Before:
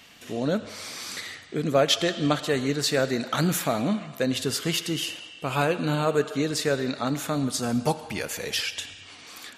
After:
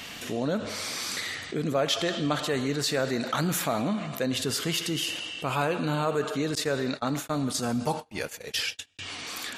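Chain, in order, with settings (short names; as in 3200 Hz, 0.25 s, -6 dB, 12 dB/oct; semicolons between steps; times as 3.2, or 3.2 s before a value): 6.55–8.99 gate -29 dBFS, range -60 dB; dynamic EQ 1000 Hz, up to +4 dB, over -37 dBFS, Q 1.7; fast leveller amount 50%; gain -7 dB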